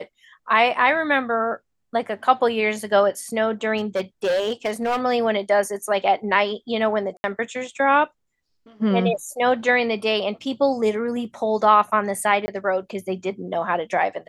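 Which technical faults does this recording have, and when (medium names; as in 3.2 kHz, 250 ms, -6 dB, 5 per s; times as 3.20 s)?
3.77–5.04 s: clipped -18 dBFS
7.17–7.24 s: dropout 71 ms
12.46–12.48 s: dropout 20 ms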